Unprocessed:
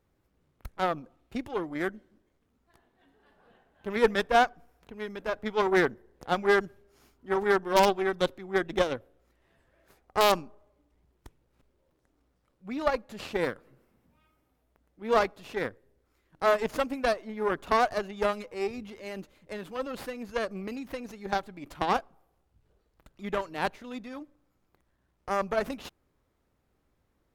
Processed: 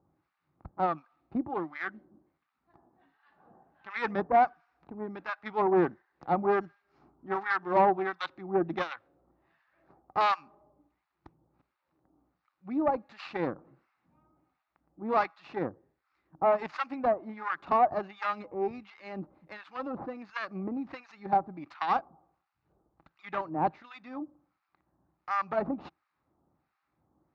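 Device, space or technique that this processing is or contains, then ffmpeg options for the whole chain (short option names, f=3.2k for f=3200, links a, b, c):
guitar amplifier with harmonic tremolo: -filter_complex "[0:a]asettb=1/sr,asplit=3[a][b][c];[a]atrim=end=12.694[d];[b]atrim=start=12.69:end=13.12,asetpts=PTS-STARTPTS,afade=t=in:d=0.004:c=qsin,afade=t=out:st=0.426:d=0.004:c=qsin,equalizer=f=1.1k:t=o:w=1:g=-4.5[e];[c]atrim=start=13.116[f];[d][e]acrossfade=d=0.004:c1=hsin:c2=qsin[g];[g][f]acrossfade=d=0.004:c1=qsin:c2=hsin,acrossover=split=1100[h][i];[h]aeval=exprs='val(0)*(1-1/2+1/2*cos(2*PI*1.4*n/s))':c=same[j];[i]aeval=exprs='val(0)*(1-1/2-1/2*cos(2*PI*1.4*n/s))':c=same[k];[j][k]amix=inputs=2:normalize=0,asoftclip=type=tanh:threshold=-21dB,highpass=84,equalizer=f=160:t=q:w=4:g=6,equalizer=f=320:t=q:w=4:g=7,equalizer=f=450:t=q:w=4:g=-6,equalizer=f=810:t=q:w=4:g=8,equalizer=f=1.2k:t=q:w=4:g=6,equalizer=f=3.2k:t=q:w=4:g=-9,lowpass=f=4.1k:w=0.5412,lowpass=f=4.1k:w=1.3066,volume=2dB"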